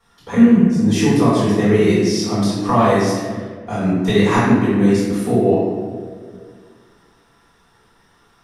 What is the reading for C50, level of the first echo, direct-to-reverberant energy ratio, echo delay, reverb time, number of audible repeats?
-1.5 dB, no echo, -10.5 dB, no echo, 1.8 s, no echo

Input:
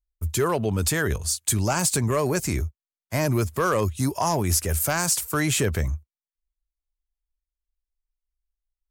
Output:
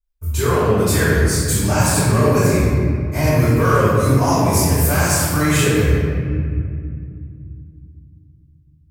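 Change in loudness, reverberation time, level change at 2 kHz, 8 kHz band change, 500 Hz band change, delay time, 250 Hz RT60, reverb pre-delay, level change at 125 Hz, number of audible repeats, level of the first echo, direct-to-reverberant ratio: +7.5 dB, 2.3 s, +7.5 dB, +3.0 dB, +8.5 dB, no echo, 4.0 s, 3 ms, +10.5 dB, no echo, no echo, -14.5 dB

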